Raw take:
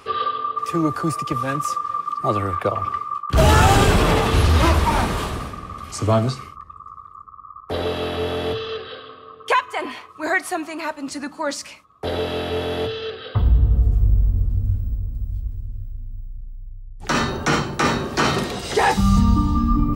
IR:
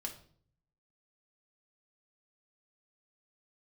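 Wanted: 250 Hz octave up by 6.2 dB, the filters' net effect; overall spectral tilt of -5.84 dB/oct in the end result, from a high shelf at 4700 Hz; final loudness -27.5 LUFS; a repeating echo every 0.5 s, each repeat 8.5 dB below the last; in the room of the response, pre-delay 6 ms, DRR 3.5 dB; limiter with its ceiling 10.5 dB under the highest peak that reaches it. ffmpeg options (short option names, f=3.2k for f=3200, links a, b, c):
-filter_complex "[0:a]equalizer=f=250:t=o:g=8,highshelf=f=4.7k:g=-8.5,alimiter=limit=-11.5dB:level=0:latency=1,aecho=1:1:500|1000|1500|2000:0.376|0.143|0.0543|0.0206,asplit=2[a][b];[1:a]atrim=start_sample=2205,adelay=6[c];[b][c]afir=irnorm=-1:irlink=0,volume=-2dB[d];[a][d]amix=inputs=2:normalize=0,volume=-7dB"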